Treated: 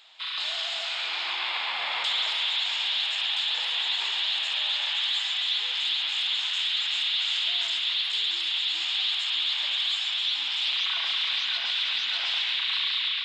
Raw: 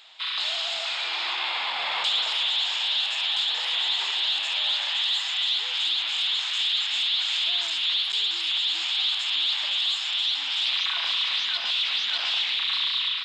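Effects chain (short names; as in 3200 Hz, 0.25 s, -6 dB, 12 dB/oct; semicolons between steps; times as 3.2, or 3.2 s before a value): narrowing echo 0.137 s, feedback 84%, band-pass 2100 Hz, level -4.5 dB; gain -3.5 dB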